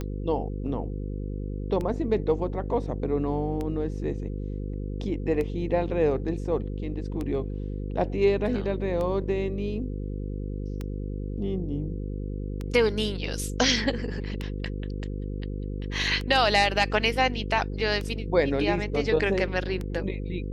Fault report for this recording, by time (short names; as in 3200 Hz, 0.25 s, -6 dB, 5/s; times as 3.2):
buzz 50 Hz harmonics 10 -32 dBFS
tick 33 1/3 rpm -20 dBFS